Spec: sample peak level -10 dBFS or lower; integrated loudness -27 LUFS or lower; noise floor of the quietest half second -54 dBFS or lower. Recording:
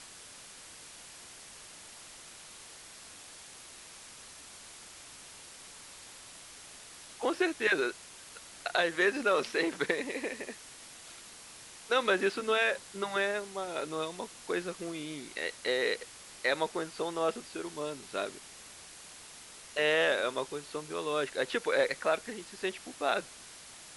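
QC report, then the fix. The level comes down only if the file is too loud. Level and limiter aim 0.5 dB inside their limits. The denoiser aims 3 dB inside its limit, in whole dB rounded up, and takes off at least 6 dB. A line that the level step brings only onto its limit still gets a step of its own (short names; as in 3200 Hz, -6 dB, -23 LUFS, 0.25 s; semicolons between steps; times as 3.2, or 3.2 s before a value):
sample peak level -13.0 dBFS: OK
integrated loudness -32.0 LUFS: OK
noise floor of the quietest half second -51 dBFS: fail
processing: denoiser 6 dB, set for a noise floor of -51 dBFS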